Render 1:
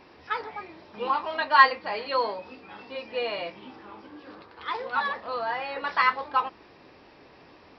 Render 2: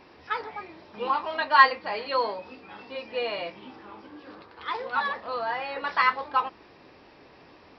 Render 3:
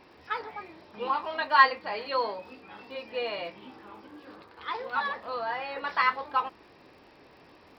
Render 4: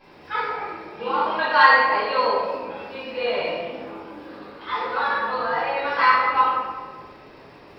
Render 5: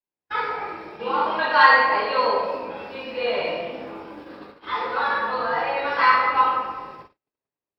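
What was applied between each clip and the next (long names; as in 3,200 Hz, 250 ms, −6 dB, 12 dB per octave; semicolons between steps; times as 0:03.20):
no processing that can be heard
surface crackle 82 per second −52 dBFS; level −2.5 dB
convolution reverb RT60 1.6 s, pre-delay 3 ms, DRR −11 dB; level −5 dB
noise gate −39 dBFS, range −49 dB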